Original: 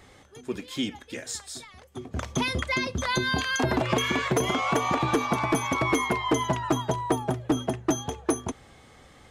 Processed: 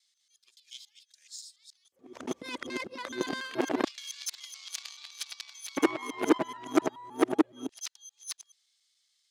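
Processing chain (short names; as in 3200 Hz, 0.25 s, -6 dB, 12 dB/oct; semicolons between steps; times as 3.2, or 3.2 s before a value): local time reversal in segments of 0.142 s; added harmonics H 3 -11 dB, 5 -44 dB, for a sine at -11 dBFS; LFO high-pass square 0.26 Hz 300–4500 Hz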